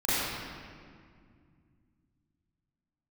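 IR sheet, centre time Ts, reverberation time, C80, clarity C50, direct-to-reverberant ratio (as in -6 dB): 160 ms, 2.1 s, -3.0 dB, -5.5 dB, -13.5 dB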